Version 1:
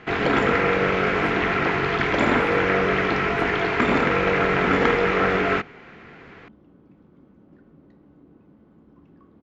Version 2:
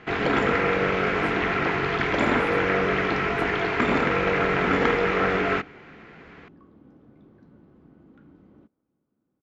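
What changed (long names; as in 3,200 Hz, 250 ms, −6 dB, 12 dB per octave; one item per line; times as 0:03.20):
first sound −3.0 dB
second sound: entry −2.60 s
reverb: on, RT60 0.85 s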